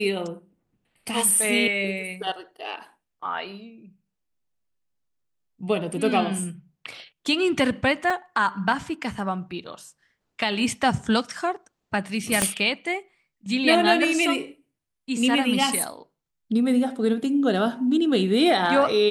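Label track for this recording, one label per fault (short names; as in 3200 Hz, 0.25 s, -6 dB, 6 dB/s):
8.100000	8.100000	gap 3.9 ms
12.420000	12.420000	pop -5 dBFS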